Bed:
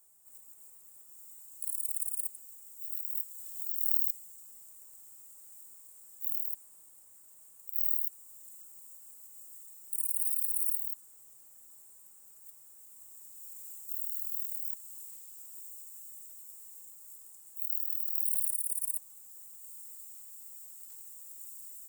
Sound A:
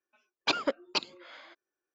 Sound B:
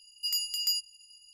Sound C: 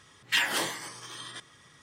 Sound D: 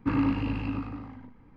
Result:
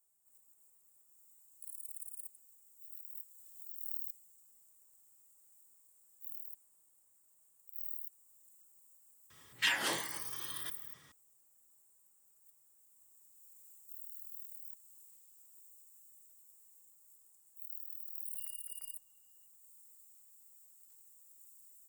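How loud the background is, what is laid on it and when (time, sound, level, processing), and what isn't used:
bed −12.5 dB
0:09.30: mix in C −5.5 dB
0:18.14: mix in B −7 dB + low-pass filter 1,800 Hz 24 dB per octave
not used: A, D

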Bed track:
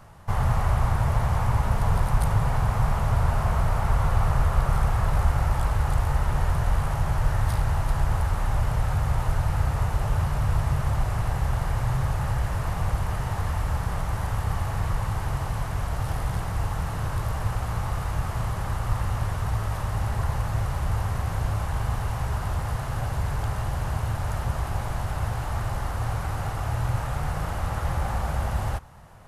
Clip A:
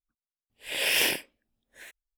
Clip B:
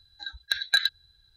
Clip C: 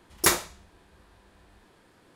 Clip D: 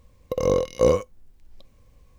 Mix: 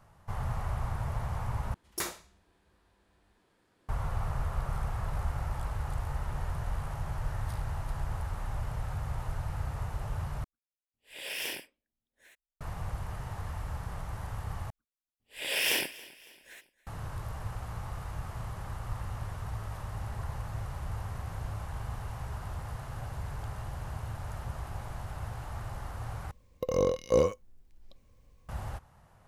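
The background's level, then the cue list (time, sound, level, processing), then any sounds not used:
bed track −11 dB
0:01.74: overwrite with C −11 dB + brickwall limiter −9.5 dBFS
0:10.44: overwrite with A −12 dB
0:14.70: overwrite with A −4 dB + repeating echo 278 ms, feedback 46%, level −20.5 dB
0:26.31: overwrite with D −6 dB
not used: B

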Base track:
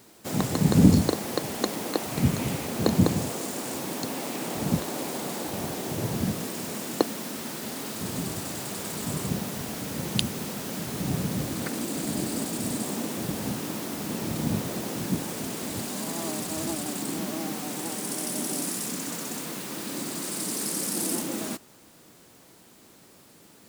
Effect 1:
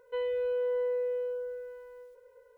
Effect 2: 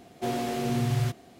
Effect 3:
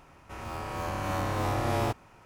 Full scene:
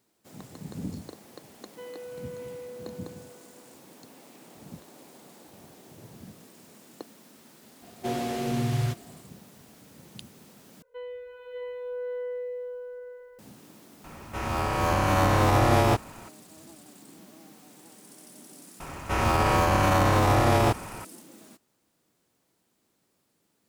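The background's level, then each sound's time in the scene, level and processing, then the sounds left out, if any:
base track −19 dB
0:01.65: mix in 1 −6.5 dB + low-shelf EQ 440 Hz −9 dB
0:07.82: mix in 2 −0.5 dB
0:10.82: overwrite with 1 −7 dB + slow-attack reverb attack 640 ms, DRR −3 dB
0:14.04: mix in 3 −10.5 dB + boost into a limiter +19.5 dB
0:18.80: mix in 3 −12 dB + boost into a limiter +27.5 dB

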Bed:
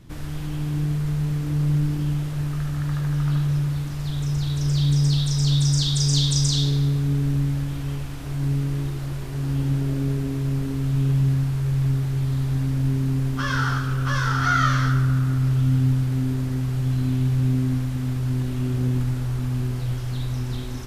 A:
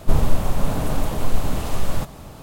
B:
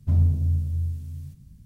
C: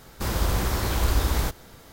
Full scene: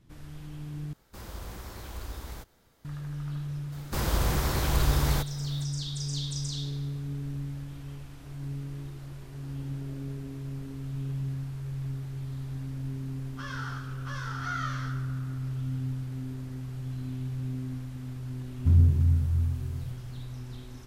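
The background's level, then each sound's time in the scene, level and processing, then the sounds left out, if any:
bed −13 dB
0:00.93: overwrite with C −16.5 dB
0:03.72: mix in C −2.5 dB
0:18.58: mix in B + parametric band 660 Hz −13 dB 0.4 octaves
not used: A

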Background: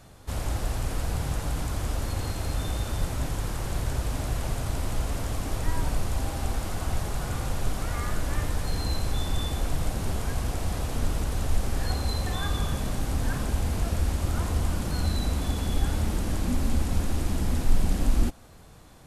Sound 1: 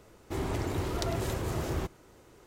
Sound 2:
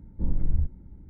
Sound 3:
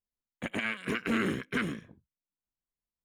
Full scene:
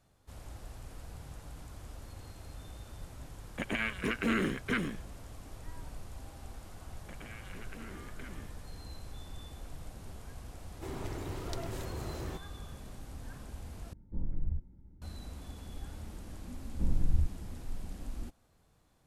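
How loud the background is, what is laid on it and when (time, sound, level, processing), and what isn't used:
background −18 dB
0:03.16: mix in 3 −1 dB
0:06.67: mix in 3 −6 dB + downward compressor, threshold −40 dBFS
0:10.51: mix in 1 −8 dB
0:13.93: overwrite with 2 −9.5 dB
0:16.60: mix in 2 −3.5 dB

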